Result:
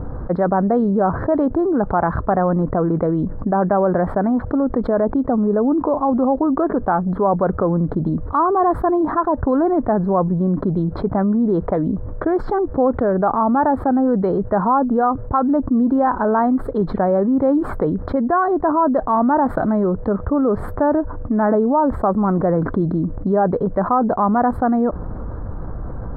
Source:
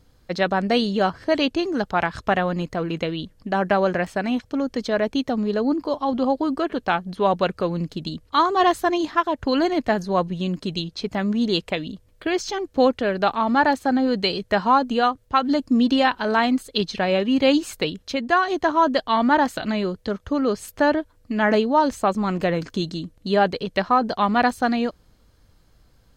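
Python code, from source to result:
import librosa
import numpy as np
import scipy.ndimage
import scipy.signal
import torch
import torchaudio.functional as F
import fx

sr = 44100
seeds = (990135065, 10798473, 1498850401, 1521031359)

y = scipy.signal.sosfilt(scipy.signal.cheby2(4, 40, 2500.0, 'lowpass', fs=sr, output='sos'), x)
y = fx.env_flatten(y, sr, amount_pct=70)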